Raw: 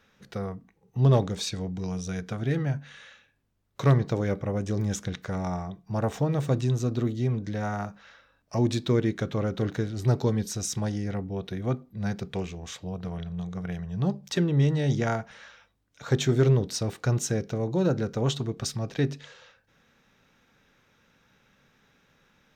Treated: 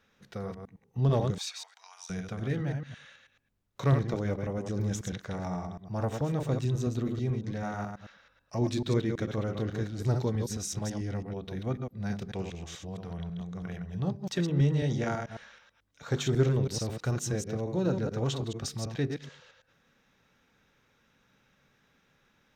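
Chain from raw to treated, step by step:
delay that plays each chunk backwards 109 ms, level −5 dB
0:01.38–0:02.10: Butterworth high-pass 870 Hz 36 dB per octave
level −5 dB

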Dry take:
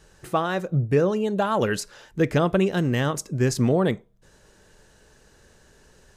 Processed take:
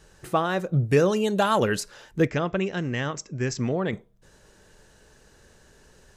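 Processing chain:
0:00.73–0:01.60: high-shelf EQ 2,200 Hz +10.5 dB
0:02.27–0:03.93: Chebyshev low-pass with heavy ripple 7,700 Hz, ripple 6 dB

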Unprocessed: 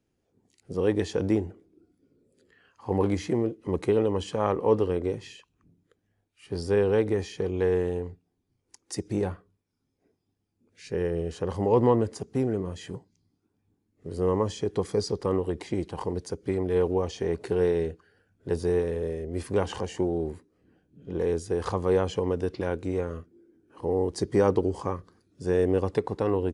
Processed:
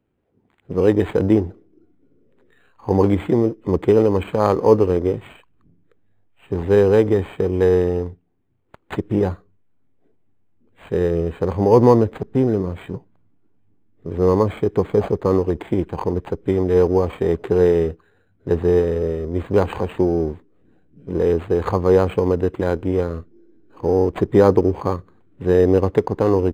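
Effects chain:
in parallel at −4 dB: slack as between gear wheels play −34 dBFS
on the sum: linearly interpolated sample-rate reduction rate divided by 8×
level +5 dB

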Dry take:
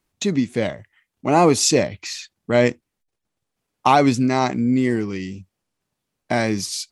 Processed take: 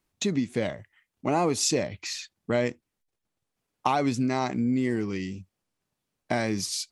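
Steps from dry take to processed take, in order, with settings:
downward compressor 3 to 1, threshold −19 dBFS, peak gain reduction 7.5 dB
level −3.5 dB

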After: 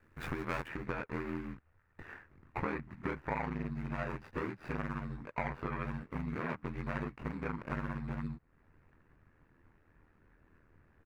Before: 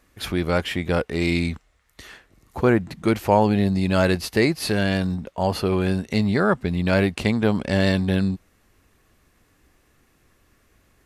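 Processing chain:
running median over 41 samples
double-tracking delay 20 ms −4 dB
downward compressor 5 to 1, threshold −33 dBFS, peak gain reduction 18 dB
flat-topped bell 1,500 Hz +13 dB
ring modulation 40 Hz
high-shelf EQ 4,900 Hz +5 dB, from 0:00.68 −8.5 dB
level −2 dB

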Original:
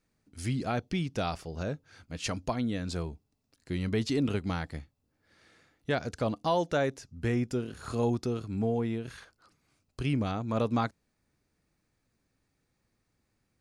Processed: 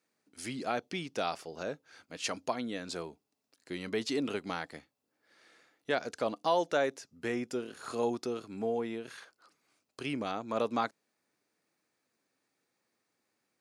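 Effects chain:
high-pass filter 330 Hz 12 dB per octave

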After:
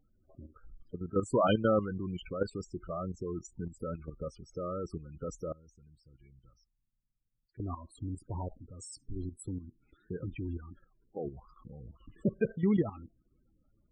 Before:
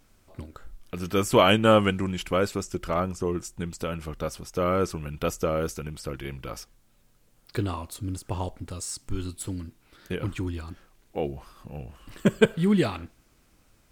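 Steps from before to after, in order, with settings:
spectral peaks only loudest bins 16
0:05.52–0:07.60: guitar amp tone stack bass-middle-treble 6-0-2
output level in coarse steps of 11 dB
level −3 dB

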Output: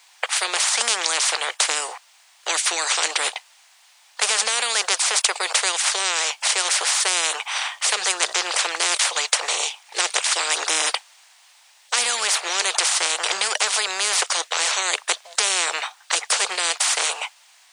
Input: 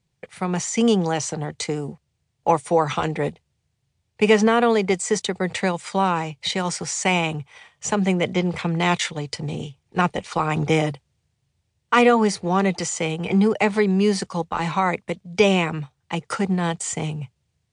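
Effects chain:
Butterworth high-pass 770 Hz 36 dB per octave
every bin compressed towards the loudest bin 10 to 1
level +6 dB

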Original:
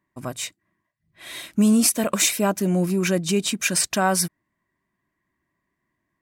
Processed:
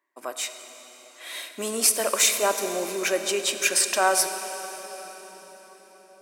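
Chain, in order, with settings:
high-pass filter 390 Hz 24 dB per octave
on a send: convolution reverb RT60 5.4 s, pre-delay 3 ms, DRR 7 dB

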